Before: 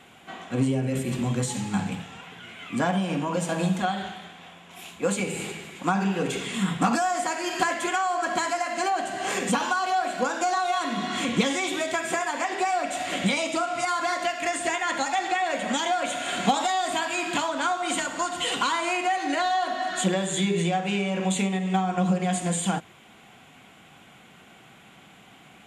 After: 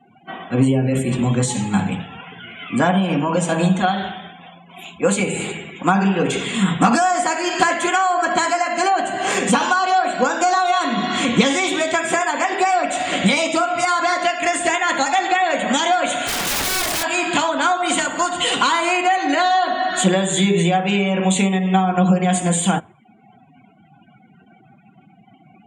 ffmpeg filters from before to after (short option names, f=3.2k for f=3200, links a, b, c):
-filter_complex "[0:a]asplit=3[a][b][c];[a]afade=t=out:st=16.26:d=0.02[d];[b]aeval=exprs='(mod(15.8*val(0)+1,2)-1)/15.8':c=same,afade=t=in:st=16.26:d=0.02,afade=t=out:st=17.02:d=0.02[e];[c]afade=t=in:st=17.02:d=0.02[f];[d][e][f]amix=inputs=3:normalize=0,afftdn=nr=36:nf=-45,volume=8dB"